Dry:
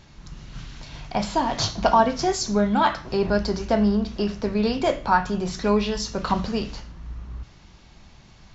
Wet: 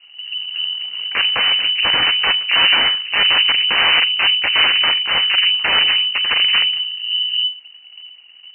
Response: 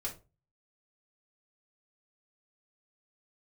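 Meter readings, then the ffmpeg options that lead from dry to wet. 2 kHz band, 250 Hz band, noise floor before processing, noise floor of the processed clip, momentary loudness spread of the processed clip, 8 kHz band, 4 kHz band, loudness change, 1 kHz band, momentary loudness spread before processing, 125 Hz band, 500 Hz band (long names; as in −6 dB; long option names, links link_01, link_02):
+17.0 dB, −17.5 dB, −50 dBFS, −44 dBFS, 9 LU, can't be measured, +23.0 dB, +9.5 dB, −2.5 dB, 20 LU, below −10 dB, −10.0 dB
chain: -filter_complex "[0:a]tiltshelf=frequency=680:gain=7.5,aeval=exprs='(mod(4.22*val(0)+1,2)-1)/4.22':channel_layout=same,tremolo=f=160:d=0.462,aeval=exprs='0.237*(cos(1*acos(clip(val(0)/0.237,-1,1)))-cos(1*PI/2))+0.119*(cos(2*acos(clip(val(0)/0.237,-1,1)))-cos(2*PI/2))+0.0473*(cos(4*acos(clip(val(0)/0.237,-1,1)))-cos(4*PI/2))+0.0668*(cos(7*acos(clip(val(0)/0.237,-1,1)))-cos(7*PI/2))+0.075*(cos(8*acos(clip(val(0)/0.237,-1,1)))-cos(8*PI/2))':channel_layout=same,asplit=2[link_01][link_02];[1:a]atrim=start_sample=2205,lowpass=2500[link_03];[link_02][link_03]afir=irnorm=-1:irlink=0,volume=-16dB[link_04];[link_01][link_04]amix=inputs=2:normalize=0,lowpass=frequency=2600:width_type=q:width=0.5098,lowpass=frequency=2600:width_type=q:width=0.6013,lowpass=frequency=2600:width_type=q:width=0.9,lowpass=frequency=2600:width_type=q:width=2.563,afreqshift=-3000,volume=1dB"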